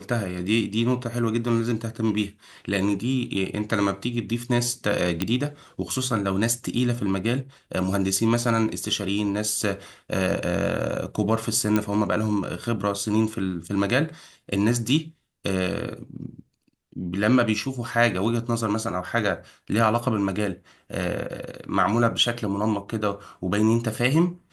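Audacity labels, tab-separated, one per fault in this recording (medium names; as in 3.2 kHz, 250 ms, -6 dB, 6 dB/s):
5.220000	5.220000	pop -9 dBFS
11.760000	11.760000	pop -9 dBFS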